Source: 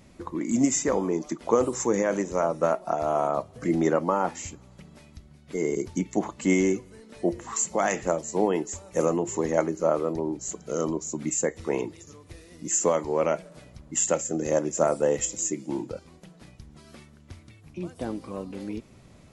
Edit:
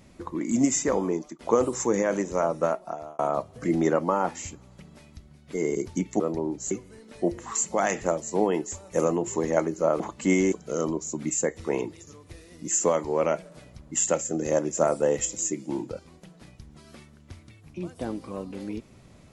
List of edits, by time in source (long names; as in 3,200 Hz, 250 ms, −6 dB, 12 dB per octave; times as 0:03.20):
0:01.11–0:01.39: fade out, to −19 dB
0:02.58–0:03.19: fade out
0:06.20–0:06.72: swap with 0:10.01–0:10.52